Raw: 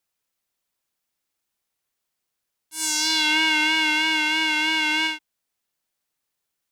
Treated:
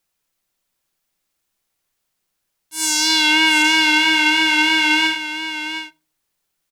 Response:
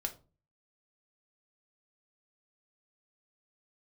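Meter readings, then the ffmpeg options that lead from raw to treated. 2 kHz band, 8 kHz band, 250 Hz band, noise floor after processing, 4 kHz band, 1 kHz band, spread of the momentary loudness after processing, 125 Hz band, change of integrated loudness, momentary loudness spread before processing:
+6.0 dB, +5.5 dB, +8.0 dB, -75 dBFS, +6.0 dB, +6.5 dB, 12 LU, n/a, +5.5 dB, 9 LU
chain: -filter_complex "[0:a]aecho=1:1:718:0.335,asplit=2[a][b];[1:a]atrim=start_sample=2205,lowshelf=f=190:g=11[c];[b][c]afir=irnorm=-1:irlink=0,volume=-8dB[d];[a][d]amix=inputs=2:normalize=0,volume=2.5dB"

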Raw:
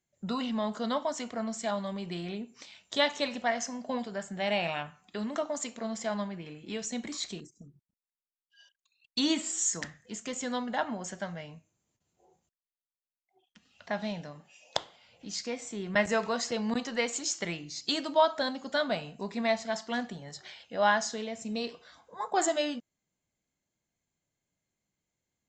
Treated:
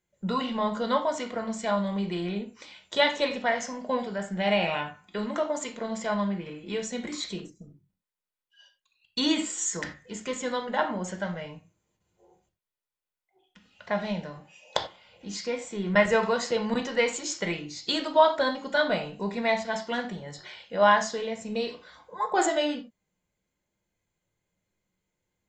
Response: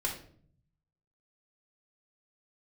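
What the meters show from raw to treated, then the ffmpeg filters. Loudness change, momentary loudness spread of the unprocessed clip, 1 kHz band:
+4.0 dB, 13 LU, +5.0 dB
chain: -filter_complex "[0:a]asplit=2[a][b];[b]lowpass=f=5.4k:w=0.5412,lowpass=f=5.4k:w=1.3066[c];[1:a]atrim=start_sample=2205,afade=t=out:st=0.15:d=0.01,atrim=end_sample=7056[d];[c][d]afir=irnorm=-1:irlink=0,volume=-3dB[e];[a][e]amix=inputs=2:normalize=0"

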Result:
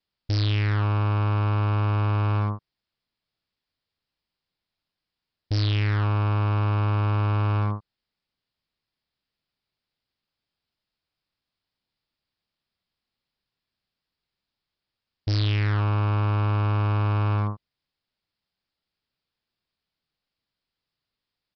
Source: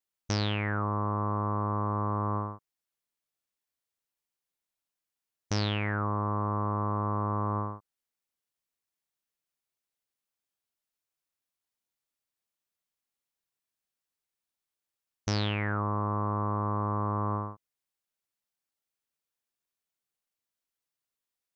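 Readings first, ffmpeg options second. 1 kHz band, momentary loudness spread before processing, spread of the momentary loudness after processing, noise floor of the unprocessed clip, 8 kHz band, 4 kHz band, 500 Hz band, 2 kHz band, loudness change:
0.0 dB, 5 LU, 6 LU, under -85 dBFS, n/a, +4.0 dB, +1.0 dB, +4.0 dB, +6.5 dB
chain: -af "bass=f=250:g=9,treble=f=4k:g=7,aresample=11025,asoftclip=type=hard:threshold=-27dB,aresample=44100,volume=6dB"

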